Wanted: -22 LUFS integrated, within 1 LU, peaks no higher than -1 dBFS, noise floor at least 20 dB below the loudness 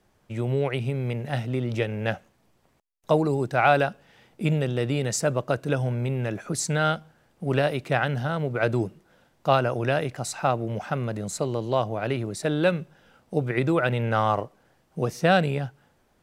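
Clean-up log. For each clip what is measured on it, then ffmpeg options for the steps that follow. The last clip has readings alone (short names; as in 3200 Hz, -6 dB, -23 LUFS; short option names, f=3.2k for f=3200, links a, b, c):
loudness -26.0 LUFS; peak -5.5 dBFS; loudness target -22.0 LUFS
-> -af "volume=4dB"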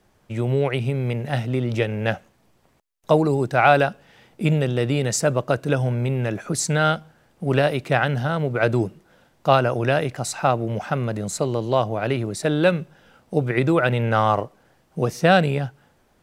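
loudness -22.0 LUFS; peak -1.5 dBFS; noise floor -62 dBFS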